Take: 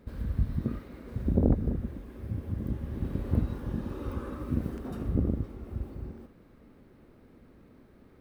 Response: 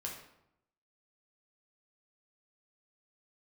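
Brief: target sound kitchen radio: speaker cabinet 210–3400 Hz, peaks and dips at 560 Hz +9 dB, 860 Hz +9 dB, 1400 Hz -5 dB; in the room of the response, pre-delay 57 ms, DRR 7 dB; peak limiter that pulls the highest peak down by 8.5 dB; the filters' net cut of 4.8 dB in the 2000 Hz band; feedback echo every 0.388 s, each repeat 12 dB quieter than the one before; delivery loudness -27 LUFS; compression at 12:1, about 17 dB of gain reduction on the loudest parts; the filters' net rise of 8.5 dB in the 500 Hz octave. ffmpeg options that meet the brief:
-filter_complex "[0:a]equalizer=f=500:t=o:g=5,equalizer=f=2k:t=o:g=-4.5,acompressor=threshold=-34dB:ratio=12,alimiter=level_in=9dB:limit=-24dB:level=0:latency=1,volume=-9dB,aecho=1:1:388|776|1164:0.251|0.0628|0.0157,asplit=2[a][b];[1:a]atrim=start_sample=2205,adelay=57[c];[b][c]afir=irnorm=-1:irlink=0,volume=-6.5dB[d];[a][d]amix=inputs=2:normalize=0,highpass=210,equalizer=f=560:t=q:w=4:g=9,equalizer=f=860:t=q:w=4:g=9,equalizer=f=1.4k:t=q:w=4:g=-5,lowpass=f=3.4k:w=0.5412,lowpass=f=3.4k:w=1.3066,volume=17.5dB"

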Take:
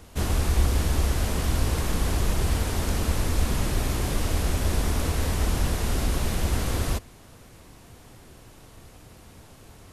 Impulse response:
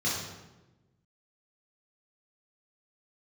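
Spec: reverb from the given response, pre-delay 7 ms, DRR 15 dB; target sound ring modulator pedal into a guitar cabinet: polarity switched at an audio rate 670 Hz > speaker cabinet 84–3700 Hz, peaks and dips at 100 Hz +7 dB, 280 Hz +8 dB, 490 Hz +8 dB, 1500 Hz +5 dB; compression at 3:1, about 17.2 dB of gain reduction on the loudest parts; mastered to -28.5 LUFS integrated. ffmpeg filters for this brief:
-filter_complex "[0:a]acompressor=threshold=-42dB:ratio=3,asplit=2[a][b];[1:a]atrim=start_sample=2205,adelay=7[c];[b][c]afir=irnorm=-1:irlink=0,volume=-24dB[d];[a][d]amix=inputs=2:normalize=0,aeval=exprs='val(0)*sgn(sin(2*PI*670*n/s))':c=same,highpass=84,equalizer=f=100:t=q:w=4:g=7,equalizer=f=280:t=q:w=4:g=8,equalizer=f=490:t=q:w=4:g=8,equalizer=f=1.5k:t=q:w=4:g=5,lowpass=f=3.7k:w=0.5412,lowpass=f=3.7k:w=1.3066,volume=10dB"

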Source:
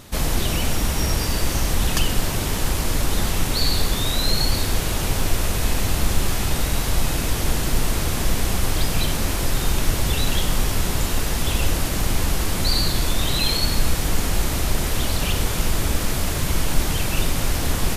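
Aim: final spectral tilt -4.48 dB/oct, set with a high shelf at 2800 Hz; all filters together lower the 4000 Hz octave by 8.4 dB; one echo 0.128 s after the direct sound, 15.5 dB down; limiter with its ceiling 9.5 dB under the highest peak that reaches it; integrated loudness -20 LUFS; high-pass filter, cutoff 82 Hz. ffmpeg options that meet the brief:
-af "highpass=82,highshelf=f=2.8k:g=-6,equalizer=f=4k:t=o:g=-5.5,alimiter=limit=-21dB:level=0:latency=1,aecho=1:1:128:0.168,volume=10.5dB"

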